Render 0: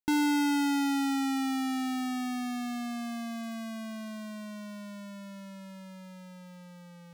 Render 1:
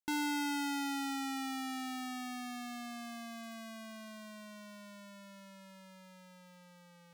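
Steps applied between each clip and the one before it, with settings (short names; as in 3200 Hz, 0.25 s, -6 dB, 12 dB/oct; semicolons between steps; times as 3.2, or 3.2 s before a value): low shelf 400 Hz -9.5 dB; gain -4 dB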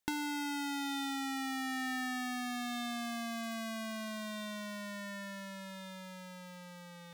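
compressor 6:1, threshold -43 dBFS, peak gain reduction 11.5 dB; small resonant body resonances 1800/3600 Hz, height 10 dB, ringing for 35 ms; gain +8.5 dB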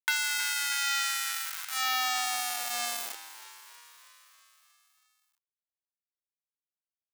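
bit-crush 5-bit; high-pass sweep 1500 Hz -> 180 Hz, 1.29–4.49; frequency-shifting echo 0.319 s, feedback 63%, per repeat +78 Hz, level -15 dB; gain +6 dB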